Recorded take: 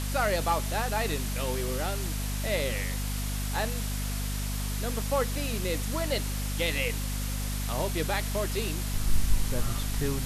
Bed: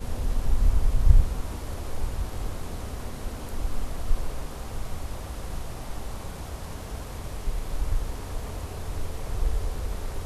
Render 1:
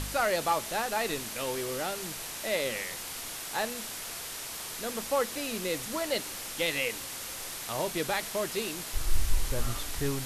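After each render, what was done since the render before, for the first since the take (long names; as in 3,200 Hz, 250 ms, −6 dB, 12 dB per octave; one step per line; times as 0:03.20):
hum removal 50 Hz, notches 5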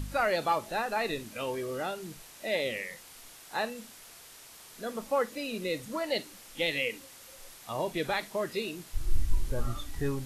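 noise reduction from a noise print 12 dB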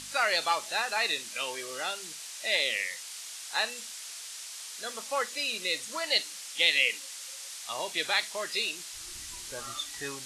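meter weighting curve ITU-R 468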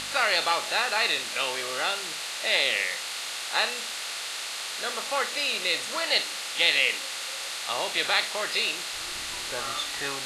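compressor on every frequency bin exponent 0.6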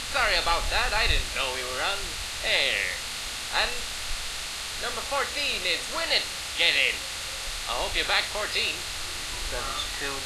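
mix in bed −12 dB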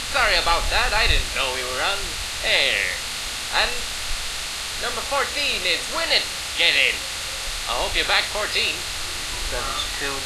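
level +5 dB
brickwall limiter −3 dBFS, peak gain reduction 1.5 dB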